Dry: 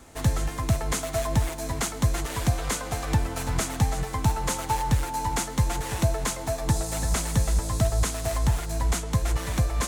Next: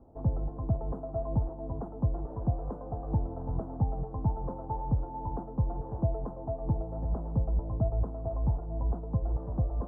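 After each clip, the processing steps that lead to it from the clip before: inverse Chebyshev low-pass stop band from 2100 Hz, stop band 50 dB; gain -5 dB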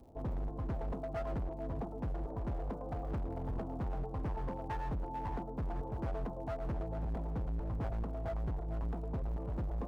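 hard clip -33 dBFS, distortion -5 dB; crackle 100/s -57 dBFS; gain -1 dB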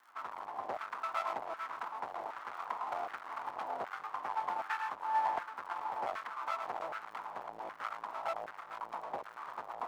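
minimum comb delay 0.93 ms; LFO high-pass saw down 1.3 Hz 660–1500 Hz; gain +5 dB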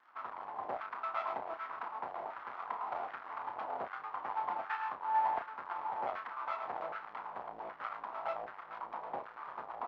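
air absorption 250 m; doubler 32 ms -8 dB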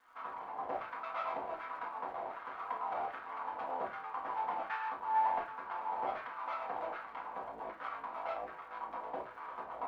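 crackle 150/s -63 dBFS; reverb RT60 0.25 s, pre-delay 4 ms, DRR -1.5 dB; gain -3 dB

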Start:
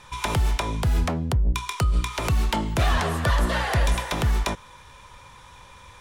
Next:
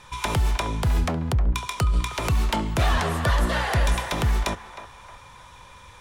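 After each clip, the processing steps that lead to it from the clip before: narrowing echo 0.311 s, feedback 48%, band-pass 1100 Hz, level -10.5 dB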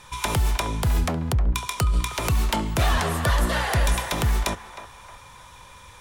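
high shelf 8400 Hz +9.5 dB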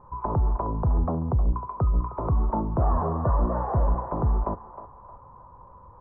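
elliptic low-pass 1100 Hz, stop band 70 dB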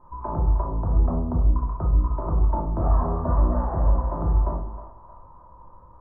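shoebox room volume 570 m³, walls furnished, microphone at 2.8 m; gain -5.5 dB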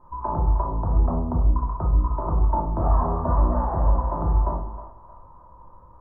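dynamic EQ 910 Hz, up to +5 dB, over -45 dBFS, Q 2

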